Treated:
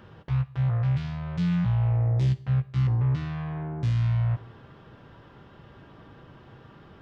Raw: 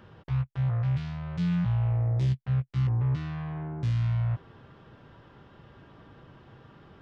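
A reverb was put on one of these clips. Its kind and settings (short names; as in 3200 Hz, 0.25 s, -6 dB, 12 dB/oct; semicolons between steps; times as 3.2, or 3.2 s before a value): Schroeder reverb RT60 0.53 s, DRR 16.5 dB; gain +2.5 dB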